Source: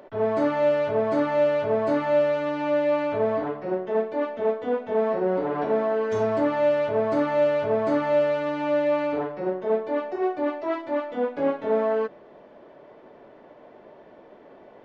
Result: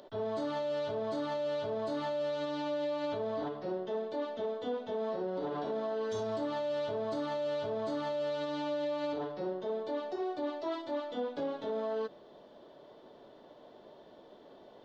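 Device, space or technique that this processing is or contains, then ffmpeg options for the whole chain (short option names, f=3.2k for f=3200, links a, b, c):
over-bright horn tweeter: -af "highshelf=f=2.9k:t=q:w=3:g=7,alimiter=limit=-22dB:level=0:latency=1:release=69,volume=-6dB"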